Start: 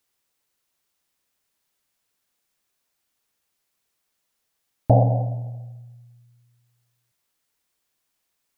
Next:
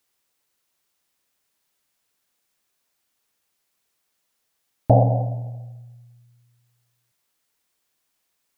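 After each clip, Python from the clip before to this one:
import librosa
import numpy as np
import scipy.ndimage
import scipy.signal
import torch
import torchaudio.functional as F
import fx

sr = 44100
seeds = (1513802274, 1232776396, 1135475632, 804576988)

y = fx.low_shelf(x, sr, hz=110.0, db=-4.0)
y = F.gain(torch.from_numpy(y), 2.0).numpy()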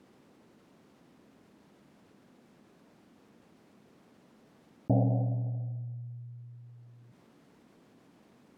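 y = fx.bandpass_q(x, sr, hz=220.0, q=1.8)
y = fx.env_flatten(y, sr, amount_pct=50)
y = F.gain(torch.from_numpy(y), -3.5).numpy()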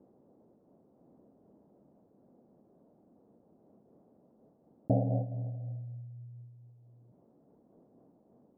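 y = fx.ladder_lowpass(x, sr, hz=810.0, resonance_pct=35)
y = fx.am_noise(y, sr, seeds[0], hz=5.7, depth_pct=65)
y = F.gain(torch.from_numpy(y), 6.0).numpy()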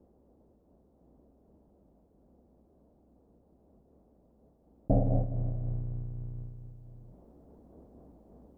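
y = fx.octave_divider(x, sr, octaves=2, level_db=0.0)
y = fx.rider(y, sr, range_db=4, speed_s=2.0)
y = F.gain(torch.from_numpy(y), 2.5).numpy()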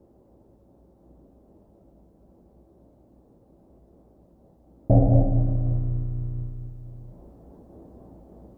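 y = fx.rev_fdn(x, sr, rt60_s=1.2, lf_ratio=1.1, hf_ratio=0.95, size_ms=53.0, drr_db=1.5)
y = F.gain(torch.from_numpy(y), 5.5).numpy()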